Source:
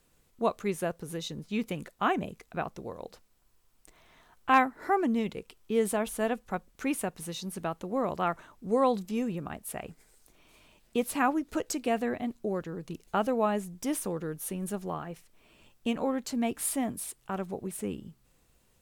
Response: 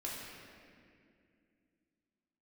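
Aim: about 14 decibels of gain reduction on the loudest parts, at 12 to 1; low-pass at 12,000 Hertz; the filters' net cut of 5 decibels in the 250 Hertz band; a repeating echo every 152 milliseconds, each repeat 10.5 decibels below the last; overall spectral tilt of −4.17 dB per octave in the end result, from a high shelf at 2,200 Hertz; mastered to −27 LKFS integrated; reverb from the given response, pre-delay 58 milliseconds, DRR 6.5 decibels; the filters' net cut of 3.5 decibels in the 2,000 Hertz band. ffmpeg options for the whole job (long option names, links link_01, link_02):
-filter_complex "[0:a]lowpass=12000,equalizer=frequency=250:width_type=o:gain=-6,equalizer=frequency=2000:width_type=o:gain=-8,highshelf=frequency=2200:gain=6,acompressor=threshold=-32dB:ratio=12,aecho=1:1:152|304|456:0.299|0.0896|0.0269,asplit=2[link_01][link_02];[1:a]atrim=start_sample=2205,adelay=58[link_03];[link_02][link_03]afir=irnorm=-1:irlink=0,volume=-8dB[link_04];[link_01][link_04]amix=inputs=2:normalize=0,volume=10dB"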